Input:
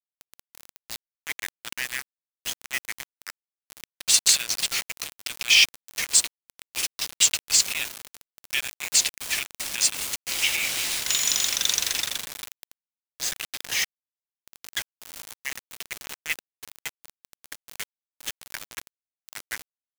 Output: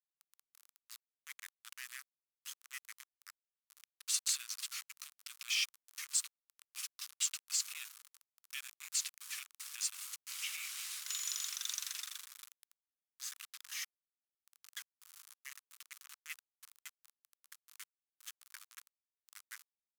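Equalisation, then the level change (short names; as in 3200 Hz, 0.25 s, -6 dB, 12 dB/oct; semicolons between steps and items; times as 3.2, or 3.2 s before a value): band-pass 1200 Hz, Q 3.7; differentiator; tilt +4.5 dB/oct; 0.0 dB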